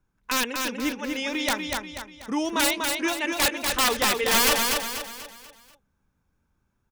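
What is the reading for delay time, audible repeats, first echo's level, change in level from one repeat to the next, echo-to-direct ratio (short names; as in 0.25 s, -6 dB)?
0.243 s, 5, -4.0 dB, -7.5 dB, -3.0 dB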